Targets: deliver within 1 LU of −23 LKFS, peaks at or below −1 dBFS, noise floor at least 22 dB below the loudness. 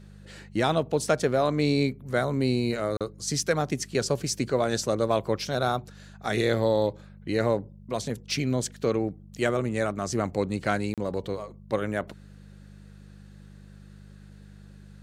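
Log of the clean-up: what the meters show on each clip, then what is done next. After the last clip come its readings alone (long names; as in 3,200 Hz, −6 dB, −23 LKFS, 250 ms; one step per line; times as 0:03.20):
number of dropouts 2; longest dropout 37 ms; mains hum 50 Hz; hum harmonics up to 200 Hz; level of the hum −45 dBFS; integrated loudness −27.5 LKFS; sample peak −10.0 dBFS; target loudness −23.0 LKFS
→ repair the gap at 0:02.97/0:10.94, 37 ms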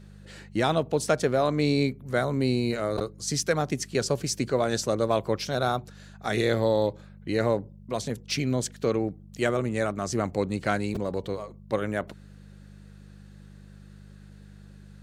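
number of dropouts 0; mains hum 50 Hz; hum harmonics up to 200 Hz; level of the hum −45 dBFS
→ hum removal 50 Hz, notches 4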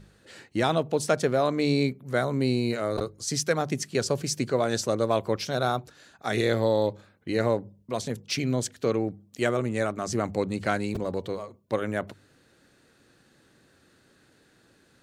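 mains hum none found; integrated loudness −27.5 LKFS; sample peak −10.0 dBFS; target loudness −23.0 LKFS
→ level +4.5 dB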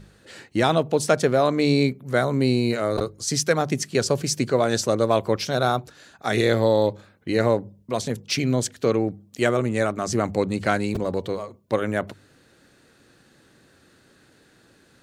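integrated loudness −23.0 LKFS; sample peak −5.5 dBFS; background noise floor −58 dBFS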